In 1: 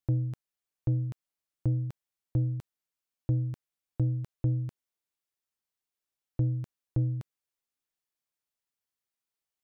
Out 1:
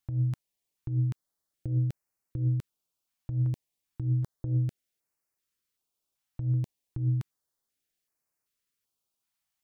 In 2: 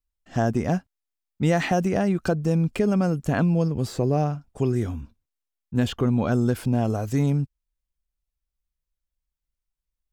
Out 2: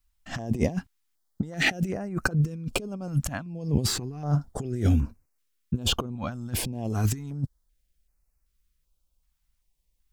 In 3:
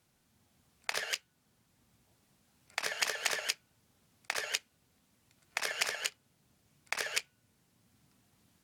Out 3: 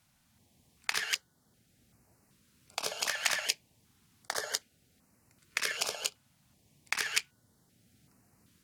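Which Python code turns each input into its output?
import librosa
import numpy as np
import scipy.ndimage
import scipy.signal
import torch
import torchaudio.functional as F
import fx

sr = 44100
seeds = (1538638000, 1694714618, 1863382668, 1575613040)

y = fx.over_compress(x, sr, threshold_db=-29.0, ratio=-0.5)
y = fx.filter_held_notch(y, sr, hz=2.6, low_hz=420.0, high_hz=3400.0)
y = y * 10.0 ** (3.5 / 20.0)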